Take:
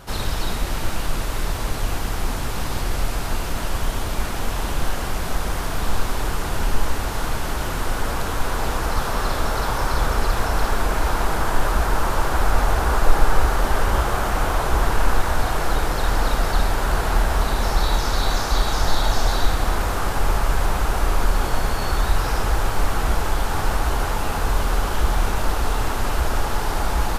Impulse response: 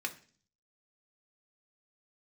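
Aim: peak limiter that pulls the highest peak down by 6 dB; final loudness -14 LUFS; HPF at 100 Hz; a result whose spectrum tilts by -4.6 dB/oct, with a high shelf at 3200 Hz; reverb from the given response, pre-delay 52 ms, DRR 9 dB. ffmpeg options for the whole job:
-filter_complex "[0:a]highpass=100,highshelf=f=3.2k:g=-3.5,alimiter=limit=-16.5dB:level=0:latency=1,asplit=2[a][b];[1:a]atrim=start_sample=2205,adelay=52[c];[b][c]afir=irnorm=-1:irlink=0,volume=-12dB[d];[a][d]amix=inputs=2:normalize=0,volume=13dB"

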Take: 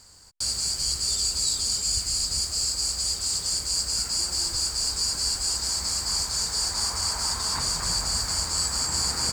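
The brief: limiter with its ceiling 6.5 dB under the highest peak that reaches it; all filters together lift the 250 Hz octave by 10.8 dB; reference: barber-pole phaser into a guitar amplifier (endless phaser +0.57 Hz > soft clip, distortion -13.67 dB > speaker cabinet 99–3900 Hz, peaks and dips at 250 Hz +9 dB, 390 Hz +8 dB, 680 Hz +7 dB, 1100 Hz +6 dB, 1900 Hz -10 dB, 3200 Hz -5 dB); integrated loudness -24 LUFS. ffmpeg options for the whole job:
-filter_complex "[0:a]equalizer=f=250:t=o:g=6.5,alimiter=limit=-18dB:level=0:latency=1,asplit=2[a][b];[b]afreqshift=0.57[c];[a][c]amix=inputs=2:normalize=1,asoftclip=threshold=-28dB,highpass=99,equalizer=f=250:t=q:w=4:g=9,equalizer=f=390:t=q:w=4:g=8,equalizer=f=680:t=q:w=4:g=7,equalizer=f=1.1k:t=q:w=4:g=6,equalizer=f=1.9k:t=q:w=4:g=-10,equalizer=f=3.2k:t=q:w=4:g=-5,lowpass=f=3.9k:w=0.5412,lowpass=f=3.9k:w=1.3066,volume=15.5dB"

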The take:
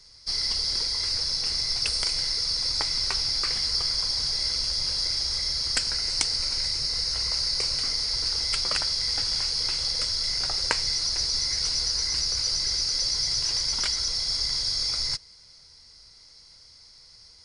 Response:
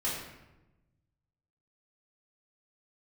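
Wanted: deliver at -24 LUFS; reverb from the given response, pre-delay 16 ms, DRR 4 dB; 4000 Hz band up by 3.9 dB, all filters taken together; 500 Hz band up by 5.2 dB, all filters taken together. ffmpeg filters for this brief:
-filter_complex "[0:a]equalizer=f=500:t=o:g=6,equalizer=f=4k:t=o:g=5,asplit=2[a][b];[1:a]atrim=start_sample=2205,adelay=16[c];[b][c]afir=irnorm=-1:irlink=0,volume=-10.5dB[d];[a][d]amix=inputs=2:normalize=0,volume=-4.5dB"

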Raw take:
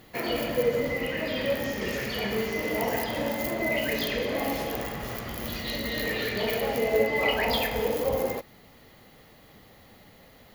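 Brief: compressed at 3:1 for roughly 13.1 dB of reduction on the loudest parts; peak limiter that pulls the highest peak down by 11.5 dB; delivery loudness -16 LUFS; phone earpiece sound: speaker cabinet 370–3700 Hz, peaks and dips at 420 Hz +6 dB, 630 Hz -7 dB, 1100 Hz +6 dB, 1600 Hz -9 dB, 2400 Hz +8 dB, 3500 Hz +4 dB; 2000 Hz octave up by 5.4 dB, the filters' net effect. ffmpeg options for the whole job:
-af "equalizer=f=2k:t=o:g=4,acompressor=threshold=-37dB:ratio=3,alimiter=level_in=8dB:limit=-24dB:level=0:latency=1,volume=-8dB,highpass=370,equalizer=f=420:t=q:w=4:g=6,equalizer=f=630:t=q:w=4:g=-7,equalizer=f=1.1k:t=q:w=4:g=6,equalizer=f=1.6k:t=q:w=4:g=-9,equalizer=f=2.4k:t=q:w=4:g=8,equalizer=f=3.5k:t=q:w=4:g=4,lowpass=f=3.7k:w=0.5412,lowpass=f=3.7k:w=1.3066,volume=24dB"

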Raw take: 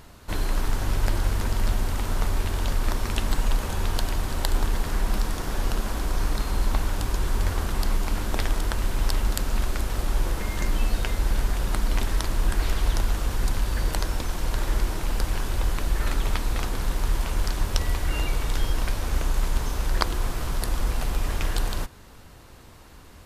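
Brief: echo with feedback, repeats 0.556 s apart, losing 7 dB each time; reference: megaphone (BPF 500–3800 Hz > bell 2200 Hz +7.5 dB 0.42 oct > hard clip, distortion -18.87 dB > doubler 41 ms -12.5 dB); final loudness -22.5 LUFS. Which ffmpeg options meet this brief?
-filter_complex "[0:a]highpass=500,lowpass=3.8k,equalizer=f=2.2k:t=o:w=0.42:g=7.5,aecho=1:1:556|1112|1668|2224|2780:0.447|0.201|0.0905|0.0407|0.0183,asoftclip=type=hard:threshold=-16dB,asplit=2[a][b];[b]adelay=41,volume=-12.5dB[c];[a][c]amix=inputs=2:normalize=0,volume=11dB"

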